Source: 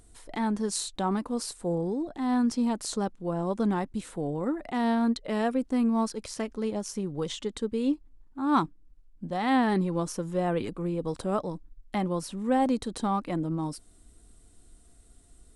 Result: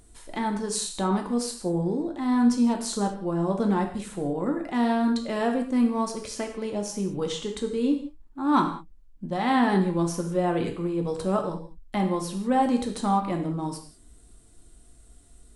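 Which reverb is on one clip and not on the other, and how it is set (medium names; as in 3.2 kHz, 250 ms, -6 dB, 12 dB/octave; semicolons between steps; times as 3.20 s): gated-style reverb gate 220 ms falling, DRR 2.5 dB; trim +1 dB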